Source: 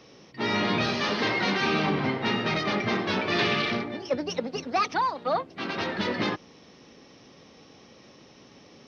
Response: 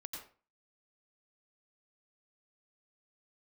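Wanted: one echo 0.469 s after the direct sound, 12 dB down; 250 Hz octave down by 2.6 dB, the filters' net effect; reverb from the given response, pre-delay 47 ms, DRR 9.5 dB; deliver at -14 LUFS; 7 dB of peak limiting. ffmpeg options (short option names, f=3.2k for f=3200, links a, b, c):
-filter_complex "[0:a]equalizer=f=250:t=o:g=-3.5,alimiter=limit=-19.5dB:level=0:latency=1,aecho=1:1:469:0.251,asplit=2[a][b];[1:a]atrim=start_sample=2205,adelay=47[c];[b][c]afir=irnorm=-1:irlink=0,volume=-7dB[d];[a][d]amix=inputs=2:normalize=0,volume=14.5dB"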